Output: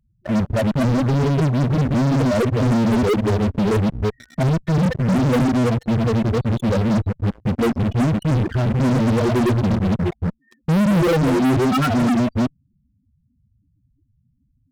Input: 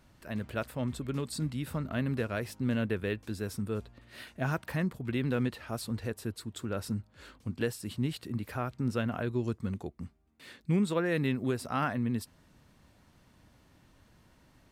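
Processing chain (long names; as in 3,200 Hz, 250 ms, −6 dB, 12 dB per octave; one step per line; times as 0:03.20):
delay that plays each chunk backwards 178 ms, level −0.5 dB
low-pass filter 1,600 Hz 6 dB per octave
spectral peaks only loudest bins 4
in parallel at −4 dB: fuzz pedal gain 46 dB, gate −52 dBFS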